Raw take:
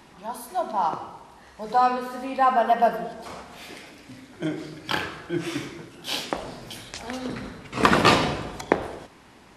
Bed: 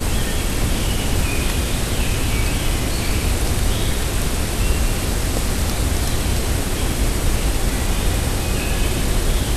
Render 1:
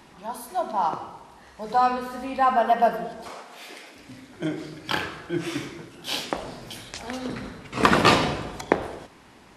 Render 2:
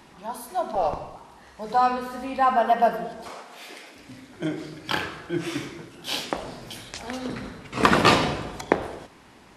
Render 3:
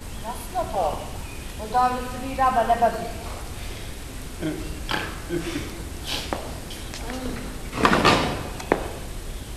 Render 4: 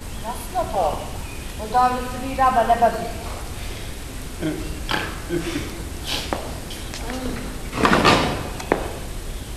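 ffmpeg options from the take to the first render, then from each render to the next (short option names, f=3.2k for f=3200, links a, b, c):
-filter_complex "[0:a]asplit=3[a][b][c];[a]afade=t=out:st=1.72:d=0.02[d];[b]asubboost=boost=3:cutoff=190,afade=t=in:st=1.72:d=0.02,afade=t=out:st=2.56:d=0.02[e];[c]afade=t=in:st=2.56:d=0.02[f];[d][e][f]amix=inputs=3:normalize=0,asettb=1/sr,asplit=3[g][h][i];[g]atrim=end=3.294[j];[h]atrim=start=3.29:end=3.96,asetpts=PTS-STARTPTS,afade=t=in:d=0.004:c=qsin,afade=t=out:st=0.666:d=0.004:c=qsin,highpass=330[k];[i]atrim=start=3.956[l];[j][k]acrossfade=d=0.004:c1=hsin:c2=qsin[m];[m][l]acrossfade=d=0.004:c1=qsin:c2=hsin"
-filter_complex "[0:a]asettb=1/sr,asplit=3[a][b][c];[a]atrim=end=0.754[d];[b]atrim=start=0.75:end=1.16,asetpts=PTS-STARTPTS,afade=t=in:d=0.004:c=qsin,afade=t=out:st=0.406:d=0.004:c=qsin,afreqshift=-200[e];[c]atrim=start=1.156[f];[d][e]acrossfade=d=0.004:c1=hsin:c2=qsin[g];[g][f]acrossfade=d=0.004:c1=qsin:c2=hsin"
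-filter_complex "[1:a]volume=-15.5dB[a];[0:a][a]amix=inputs=2:normalize=0"
-af "volume=3dB,alimiter=limit=-1dB:level=0:latency=1"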